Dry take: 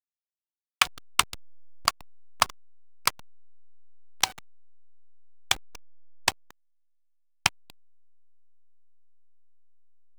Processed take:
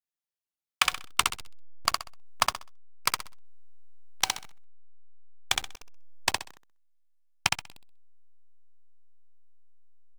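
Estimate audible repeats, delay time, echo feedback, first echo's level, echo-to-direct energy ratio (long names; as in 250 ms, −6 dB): 3, 64 ms, 26%, −3.5 dB, −3.0 dB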